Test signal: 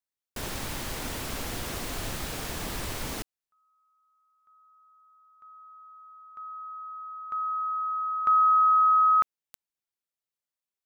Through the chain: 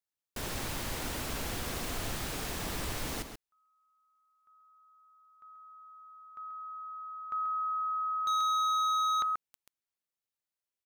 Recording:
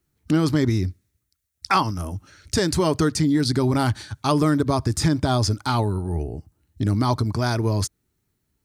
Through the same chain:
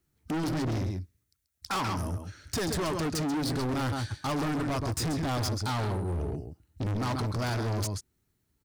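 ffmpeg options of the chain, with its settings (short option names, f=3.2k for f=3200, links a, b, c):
-filter_complex "[0:a]asplit=2[a][b];[b]adelay=134.1,volume=-8dB,highshelf=f=4k:g=-3.02[c];[a][c]amix=inputs=2:normalize=0,volume=25.5dB,asoftclip=hard,volume=-25.5dB,volume=-2.5dB"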